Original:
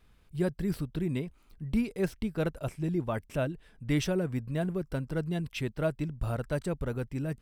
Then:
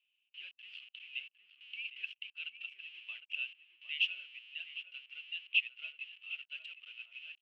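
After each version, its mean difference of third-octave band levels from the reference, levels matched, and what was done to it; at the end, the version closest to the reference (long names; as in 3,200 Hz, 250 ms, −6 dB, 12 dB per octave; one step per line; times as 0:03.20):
20.0 dB: noise reduction from a noise print of the clip's start 8 dB
in parallel at −8 dB: comparator with hysteresis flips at −45.5 dBFS
on the sum: flat-topped band-pass 2,800 Hz, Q 5.9
slap from a distant wall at 130 metres, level −8 dB
level +10.5 dB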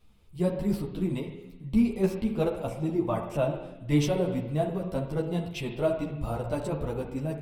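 5.5 dB: parametric band 1,600 Hz −10.5 dB 0.62 octaves
spring reverb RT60 1.2 s, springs 34/59 ms, chirp 20 ms, DRR 5 dB
dynamic equaliser 890 Hz, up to +7 dB, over −48 dBFS, Q 1.1
string-ensemble chorus
level +4 dB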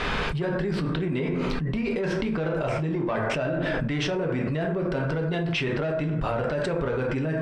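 9.5 dB: mid-hump overdrive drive 17 dB, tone 3,700 Hz, clips at −16 dBFS
high-frequency loss of the air 110 metres
dense smooth reverb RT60 0.61 s, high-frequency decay 0.5×, DRR 1.5 dB
envelope flattener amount 100%
level −7 dB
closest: second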